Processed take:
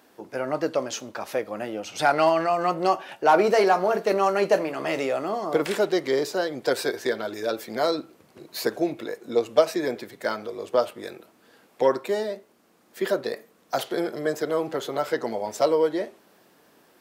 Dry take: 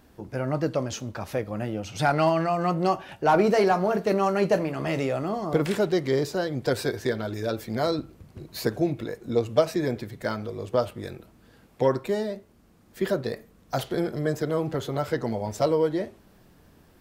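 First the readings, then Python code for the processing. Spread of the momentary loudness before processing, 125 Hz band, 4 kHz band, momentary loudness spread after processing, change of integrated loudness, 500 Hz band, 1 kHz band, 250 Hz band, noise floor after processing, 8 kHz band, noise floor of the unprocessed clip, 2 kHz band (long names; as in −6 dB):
10 LU, −11.5 dB, +3.0 dB, 12 LU, +1.5 dB, +2.0 dB, +3.0 dB, −2.5 dB, −60 dBFS, +3.0 dB, −57 dBFS, +3.0 dB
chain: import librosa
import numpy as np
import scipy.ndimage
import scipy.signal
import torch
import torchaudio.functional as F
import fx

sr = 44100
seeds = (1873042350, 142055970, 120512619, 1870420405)

y = scipy.signal.sosfilt(scipy.signal.butter(2, 350.0, 'highpass', fs=sr, output='sos'), x)
y = y * 10.0 ** (3.0 / 20.0)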